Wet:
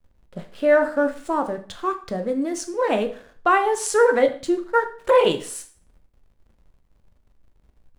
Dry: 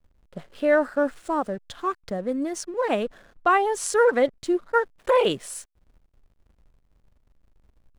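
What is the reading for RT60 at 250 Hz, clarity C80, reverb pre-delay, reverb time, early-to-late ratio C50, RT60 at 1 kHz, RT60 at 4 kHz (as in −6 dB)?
0.45 s, 16.5 dB, 5 ms, 0.45 s, 12.0 dB, 0.45 s, 0.45 s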